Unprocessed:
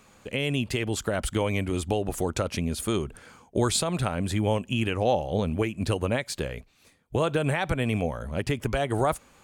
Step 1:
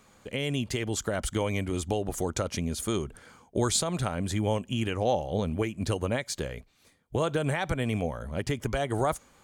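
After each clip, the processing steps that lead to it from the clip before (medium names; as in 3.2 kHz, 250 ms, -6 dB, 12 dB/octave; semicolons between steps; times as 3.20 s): band-stop 2.6 kHz, Q 12; dynamic bell 6.4 kHz, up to +6 dB, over -54 dBFS, Q 2.7; trim -2.5 dB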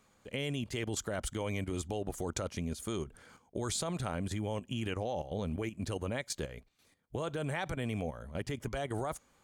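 level held to a coarse grid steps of 11 dB; trim -2 dB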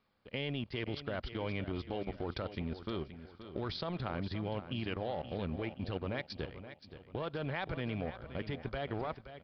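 companding laws mixed up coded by A; resampled via 11.025 kHz; feedback delay 524 ms, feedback 41%, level -12 dB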